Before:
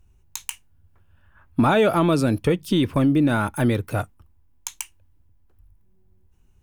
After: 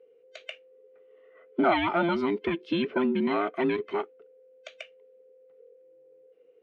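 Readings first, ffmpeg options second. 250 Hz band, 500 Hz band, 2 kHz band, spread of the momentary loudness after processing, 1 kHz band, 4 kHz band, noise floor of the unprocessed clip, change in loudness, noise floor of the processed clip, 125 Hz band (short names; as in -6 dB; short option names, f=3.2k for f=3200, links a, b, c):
-7.5 dB, -5.0 dB, -3.5 dB, 20 LU, -3.5 dB, -5.5 dB, -58 dBFS, -6.0 dB, -59 dBFS, -18.0 dB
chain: -af "afftfilt=real='real(if(between(b,1,1008),(2*floor((b-1)/24)+1)*24-b,b),0)':imag='imag(if(between(b,1,1008),(2*floor((b-1)/24)+1)*24-b,b),0)*if(between(b,1,1008),-1,1)':win_size=2048:overlap=0.75,highpass=290,equalizer=f=640:t=q:w=4:g=6,equalizer=f=970:t=q:w=4:g=-8,equalizer=f=2.4k:t=q:w=4:g=4,lowpass=f=3.4k:w=0.5412,lowpass=f=3.4k:w=1.3066,volume=-3.5dB"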